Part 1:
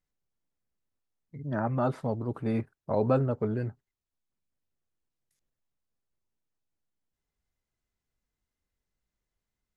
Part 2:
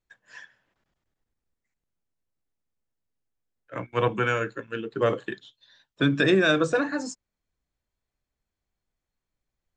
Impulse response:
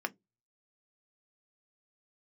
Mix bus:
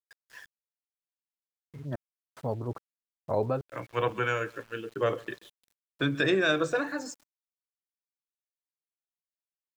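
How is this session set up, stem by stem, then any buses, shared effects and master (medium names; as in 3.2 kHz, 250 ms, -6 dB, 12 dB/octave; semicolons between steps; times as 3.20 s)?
+0.5 dB, 0.40 s, no send, no echo send, trance gate "...xxxx." 145 bpm -60 dB; auto duck -10 dB, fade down 0.30 s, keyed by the second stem
-3.5 dB, 0.00 s, no send, echo send -22.5 dB, none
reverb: none
echo: feedback delay 132 ms, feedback 37%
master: peaking EQ 210 Hz -7 dB 0.78 oct; small samples zeroed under -51.5 dBFS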